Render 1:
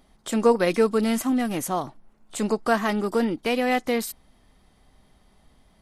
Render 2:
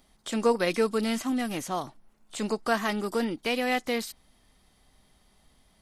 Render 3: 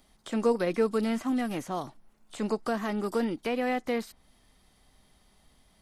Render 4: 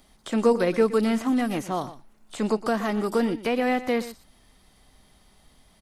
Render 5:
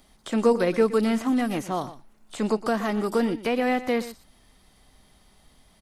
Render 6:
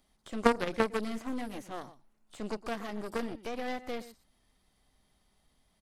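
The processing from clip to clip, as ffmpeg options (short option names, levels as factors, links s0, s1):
-filter_complex "[0:a]acrossover=split=5900[s0][s1];[s1]acompressor=threshold=0.00447:ratio=4:attack=1:release=60[s2];[s0][s2]amix=inputs=2:normalize=0,highshelf=f=2300:g=8.5,volume=0.531"
-filter_complex "[0:a]acrossover=split=600|2000[s0][s1][s2];[s1]alimiter=level_in=1.5:limit=0.0631:level=0:latency=1:release=156,volume=0.668[s3];[s2]acompressor=threshold=0.00501:ratio=6[s4];[s0][s3][s4]amix=inputs=3:normalize=0"
-af "aecho=1:1:120:0.178,volume=1.78"
-af anull
-af "aeval=exprs='0.376*(cos(1*acos(clip(val(0)/0.376,-1,1)))-cos(1*PI/2))+0.0473*(cos(2*acos(clip(val(0)/0.376,-1,1)))-cos(2*PI/2))+0.168*(cos(3*acos(clip(val(0)/0.376,-1,1)))-cos(3*PI/2))+0.0422*(cos(5*acos(clip(val(0)/0.376,-1,1)))-cos(5*PI/2))+0.015*(cos(8*acos(clip(val(0)/0.376,-1,1)))-cos(8*PI/2))':c=same"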